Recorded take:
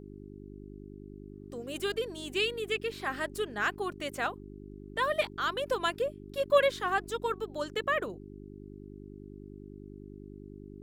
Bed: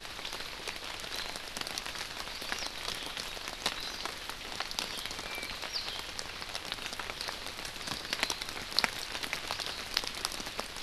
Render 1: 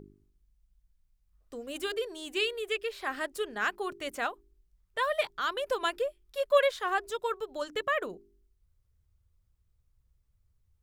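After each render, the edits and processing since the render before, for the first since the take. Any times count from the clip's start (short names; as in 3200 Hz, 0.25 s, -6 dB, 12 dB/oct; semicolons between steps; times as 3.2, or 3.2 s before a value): de-hum 50 Hz, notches 8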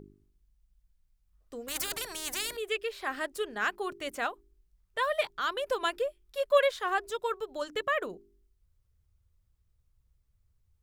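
1.68–2.57 spectral compressor 4:1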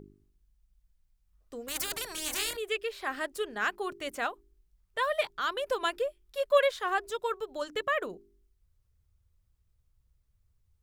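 2.12–2.56 doubler 26 ms -2.5 dB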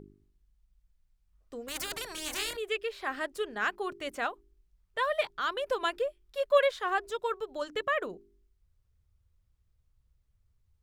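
high shelf 7400 Hz -7.5 dB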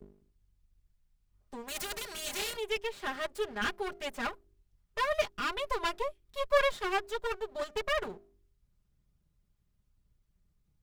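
minimum comb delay 4.9 ms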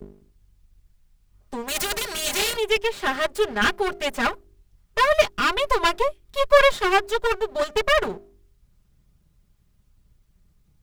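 gain +12 dB; limiter -3 dBFS, peak gain reduction 2 dB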